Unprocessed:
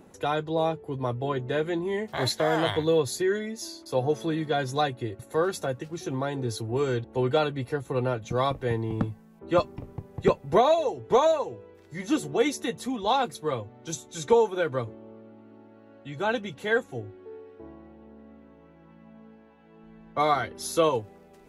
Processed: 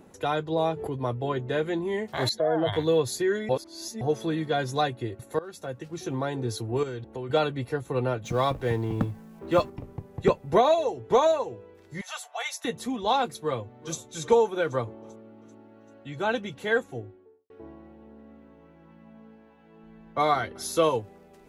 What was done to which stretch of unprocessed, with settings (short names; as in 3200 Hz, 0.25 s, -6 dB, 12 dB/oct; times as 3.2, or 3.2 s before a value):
0.52–0.94 backwards sustainer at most 58 dB/s
2.29–2.73 spectral contrast raised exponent 1.8
3.49–4.01 reverse
5.39–6.01 fade in, from -21.5 dB
6.83–7.3 compressor, threshold -31 dBFS
8.24–9.7 G.711 law mismatch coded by mu
12.01–12.65 elliptic high-pass 680 Hz, stop band 50 dB
13.42–13.98 echo throw 0.39 s, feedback 55%, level -16.5 dB
14.72–15.13 bell 840 Hz +5.5 dB
16.84–17.5 studio fade out
20.37–20.95 echo 0.185 s -22.5 dB